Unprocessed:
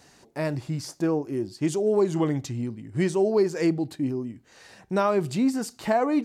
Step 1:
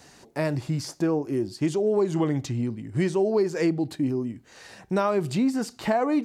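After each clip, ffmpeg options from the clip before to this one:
ffmpeg -i in.wav -filter_complex "[0:a]acrossover=split=560|5100[link_01][link_02][link_03];[link_03]alimiter=level_in=11dB:limit=-24dB:level=0:latency=1:release=450,volume=-11dB[link_04];[link_01][link_02][link_04]amix=inputs=3:normalize=0,acompressor=threshold=-26dB:ratio=2,volume=3.5dB" out.wav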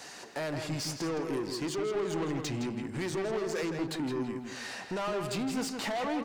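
ffmpeg -i in.wav -filter_complex "[0:a]alimiter=limit=-19.5dB:level=0:latency=1:release=257,asplit=2[link_01][link_02];[link_02]highpass=frequency=720:poles=1,volume=22dB,asoftclip=type=tanh:threshold=-19.5dB[link_03];[link_01][link_03]amix=inputs=2:normalize=0,lowpass=frequency=8000:poles=1,volume=-6dB,asplit=2[link_04][link_05];[link_05]adelay=164,lowpass=frequency=4000:poles=1,volume=-5.5dB,asplit=2[link_06][link_07];[link_07]adelay=164,lowpass=frequency=4000:poles=1,volume=0.37,asplit=2[link_08][link_09];[link_09]adelay=164,lowpass=frequency=4000:poles=1,volume=0.37,asplit=2[link_10][link_11];[link_11]adelay=164,lowpass=frequency=4000:poles=1,volume=0.37[link_12];[link_04][link_06][link_08][link_10][link_12]amix=inputs=5:normalize=0,volume=-8dB" out.wav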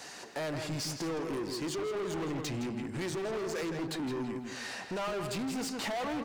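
ffmpeg -i in.wav -af "volume=32dB,asoftclip=hard,volume=-32dB" out.wav

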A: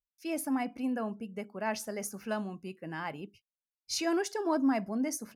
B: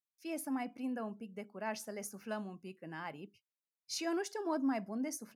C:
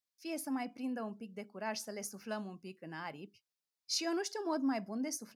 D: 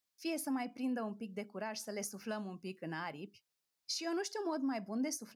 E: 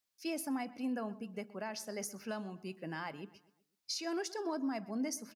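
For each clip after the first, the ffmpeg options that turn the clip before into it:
ffmpeg -i in.wav -af "highpass=110,volume=-6dB" out.wav
ffmpeg -i in.wav -af "equalizer=frequency=4900:width_type=o:width=0.76:gain=7" out.wav
ffmpeg -i in.wav -af "alimiter=level_in=10dB:limit=-24dB:level=0:latency=1:release=447,volume=-10dB,volume=5dB" out.wav
ffmpeg -i in.wav -filter_complex "[0:a]asplit=2[link_01][link_02];[link_02]adelay=125,lowpass=frequency=3400:poles=1,volume=-18.5dB,asplit=2[link_03][link_04];[link_04]adelay=125,lowpass=frequency=3400:poles=1,volume=0.44,asplit=2[link_05][link_06];[link_06]adelay=125,lowpass=frequency=3400:poles=1,volume=0.44,asplit=2[link_07][link_08];[link_08]adelay=125,lowpass=frequency=3400:poles=1,volume=0.44[link_09];[link_01][link_03][link_05][link_07][link_09]amix=inputs=5:normalize=0" out.wav

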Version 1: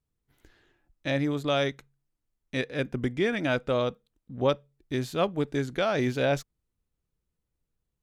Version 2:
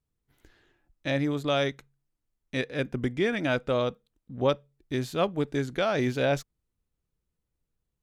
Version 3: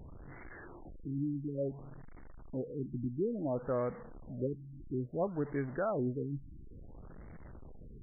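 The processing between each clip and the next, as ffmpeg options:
ffmpeg -i in.wav -af anull out.wav
ffmpeg -i in.wav -af "aeval=exprs='val(0)+0.5*0.02*sgn(val(0))':channel_layout=same,afftfilt=real='re*lt(b*sr/1024,340*pow(2300/340,0.5+0.5*sin(2*PI*0.58*pts/sr)))':imag='im*lt(b*sr/1024,340*pow(2300/340,0.5+0.5*sin(2*PI*0.58*pts/sr)))':win_size=1024:overlap=0.75,volume=-8dB" out.wav

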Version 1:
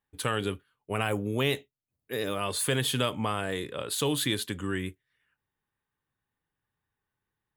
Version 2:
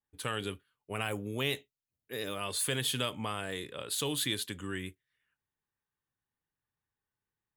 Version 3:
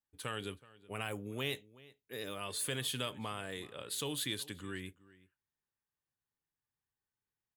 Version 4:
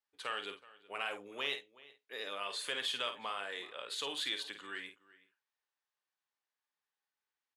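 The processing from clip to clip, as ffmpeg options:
ffmpeg -i in.wav -af "adynamicequalizer=threshold=0.00794:dfrequency=1800:dqfactor=0.7:tfrequency=1800:tqfactor=0.7:attack=5:release=100:ratio=0.375:range=2.5:mode=boostabove:tftype=highshelf,volume=-7dB" out.wav
ffmpeg -i in.wav -filter_complex "[0:a]asplit=2[link_01][link_02];[link_02]adelay=373.2,volume=-20dB,highshelf=frequency=4000:gain=-8.4[link_03];[link_01][link_03]amix=inputs=2:normalize=0,volume=-5dB" out.wav
ffmpeg -i in.wav -filter_complex "[0:a]asplit=2[link_01][link_02];[link_02]asoftclip=type=tanh:threshold=-32dB,volume=-9dB[link_03];[link_01][link_03]amix=inputs=2:normalize=0,highpass=620,lowpass=4900,asplit=2[link_04][link_05];[link_05]adelay=50,volume=-8.5dB[link_06];[link_04][link_06]amix=inputs=2:normalize=0,volume=1dB" out.wav

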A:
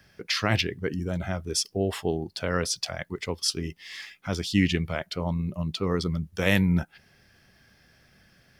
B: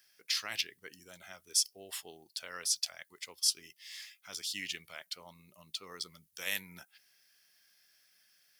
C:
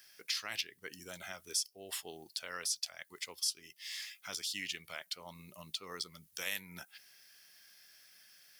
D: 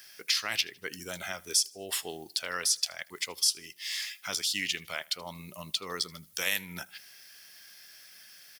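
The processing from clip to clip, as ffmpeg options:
ffmpeg -i in.wav -af "aderivative" out.wav
ffmpeg -i in.wav -af "acompressor=threshold=-49dB:ratio=2,volume=7dB" out.wav
ffmpeg -i in.wav -af "aecho=1:1:78|156|234:0.0631|0.0259|0.0106,volume=8.5dB" out.wav

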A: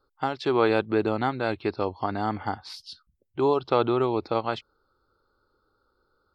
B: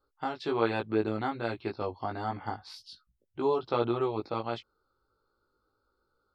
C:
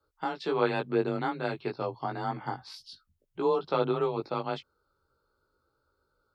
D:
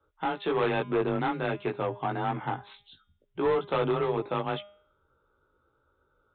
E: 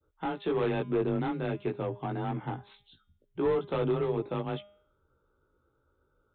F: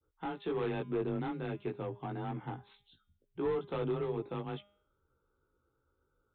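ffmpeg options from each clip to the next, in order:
ffmpeg -i in.wav -af "flanger=delay=17:depth=2:speed=1.3,volume=-3dB" out.wav
ffmpeg -i in.wav -af "afreqshift=24,volume=1dB" out.wav
ffmpeg -i in.wav -af "aresample=8000,asoftclip=type=tanh:threshold=-25.5dB,aresample=44100,bandreject=frequency=203.4:width_type=h:width=4,bandreject=frequency=406.8:width_type=h:width=4,bandreject=frequency=610.2:width_type=h:width=4,bandreject=frequency=813.6:width_type=h:width=4,bandreject=frequency=1017:width_type=h:width=4,bandreject=frequency=1220.4:width_type=h:width=4,bandreject=frequency=1423.8:width_type=h:width=4,bandreject=frequency=1627.2:width_type=h:width=4,bandreject=frequency=1830.6:width_type=h:width=4,bandreject=frequency=2034:width_type=h:width=4,bandreject=frequency=2237.4:width_type=h:width=4,bandreject=frequency=2440.8:width_type=h:width=4,bandreject=frequency=2644.2:width_type=h:width=4,bandreject=frequency=2847.6:width_type=h:width=4,bandreject=frequency=3051:width_type=h:width=4,bandreject=frequency=3254.4:width_type=h:width=4,bandreject=frequency=3457.8:width_type=h:width=4,bandreject=frequency=3661.2:width_type=h:width=4,volume=5dB" out.wav
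ffmpeg -i in.wav -filter_complex "[0:a]adynamicequalizer=threshold=0.00891:dfrequency=1200:dqfactor=0.71:tfrequency=1200:tqfactor=0.71:attack=5:release=100:ratio=0.375:range=1.5:mode=cutabove:tftype=bell,acrossover=split=460[link_01][link_02];[link_01]acontrast=73[link_03];[link_03][link_02]amix=inputs=2:normalize=0,volume=-5.5dB" out.wav
ffmpeg -i in.wav -af "bandreject=frequency=600:width=12,volume=-5.5dB" out.wav

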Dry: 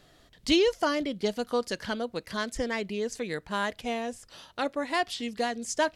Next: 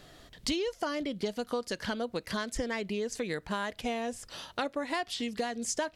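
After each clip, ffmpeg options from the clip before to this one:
ffmpeg -i in.wav -af "acompressor=threshold=-35dB:ratio=6,volume=5dB" out.wav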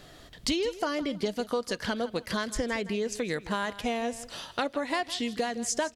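ffmpeg -i in.wav -af "aecho=1:1:161|322:0.158|0.0396,volume=3dB" out.wav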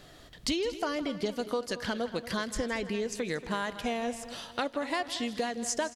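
ffmpeg -i in.wav -filter_complex "[0:a]asplit=2[link_01][link_02];[link_02]adelay=232,lowpass=frequency=4400:poles=1,volume=-14dB,asplit=2[link_03][link_04];[link_04]adelay=232,lowpass=frequency=4400:poles=1,volume=0.38,asplit=2[link_05][link_06];[link_06]adelay=232,lowpass=frequency=4400:poles=1,volume=0.38,asplit=2[link_07][link_08];[link_08]adelay=232,lowpass=frequency=4400:poles=1,volume=0.38[link_09];[link_01][link_03][link_05][link_07][link_09]amix=inputs=5:normalize=0,volume=-2dB" out.wav

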